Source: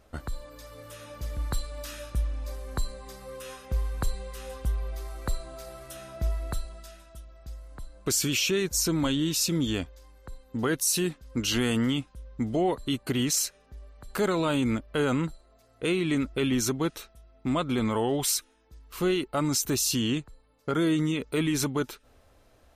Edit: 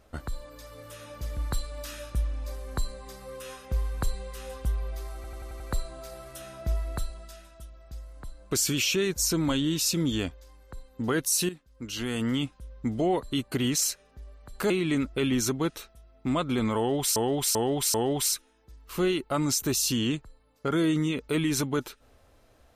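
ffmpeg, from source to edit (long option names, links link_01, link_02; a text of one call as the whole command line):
ffmpeg -i in.wav -filter_complex "[0:a]asplit=11[link_01][link_02][link_03][link_04][link_05][link_06][link_07][link_08][link_09][link_10][link_11];[link_01]atrim=end=5.242[link_12];[link_02]atrim=start=5.148:end=5.242[link_13];[link_03]atrim=start=5.148:end=5.242[link_14];[link_04]atrim=start=5.148:end=5.242[link_15];[link_05]atrim=start=5.148:end=5.242[link_16];[link_06]atrim=start=5.148:end=11.04,asetpts=PTS-STARTPTS,afade=type=out:start_time=5.888:duration=0.004:curve=hsin:silence=0.237137[link_17];[link_07]atrim=start=11.04:end=14.252,asetpts=PTS-STARTPTS,afade=type=in:duration=0.94:curve=qua:silence=0.237137[link_18];[link_08]atrim=start=15.898:end=18.362[link_19];[link_09]atrim=start=17.968:end=18.362[link_20];[link_10]atrim=start=17.968:end=18.362[link_21];[link_11]atrim=start=17.968[link_22];[link_12][link_13]acrossfade=duration=0.004:curve1=hsin:curve2=hsin[link_23];[link_23][link_14]acrossfade=duration=0.004:curve1=hsin:curve2=hsin[link_24];[link_24][link_15]acrossfade=duration=0.004:curve1=hsin:curve2=hsin[link_25];[link_25][link_16]acrossfade=duration=0.004:curve1=hsin:curve2=hsin[link_26];[link_17][link_18]concat=n=2:v=0:a=1[link_27];[link_26][link_27]acrossfade=duration=0.004:curve1=hsin:curve2=hsin[link_28];[link_28][link_19]acrossfade=duration=0.004:curve1=hsin:curve2=hsin[link_29];[link_29][link_20]acrossfade=duration=0.004:curve1=hsin:curve2=hsin[link_30];[link_30][link_21]acrossfade=duration=0.004:curve1=hsin:curve2=hsin[link_31];[link_31][link_22]acrossfade=duration=0.004:curve1=hsin:curve2=hsin" out.wav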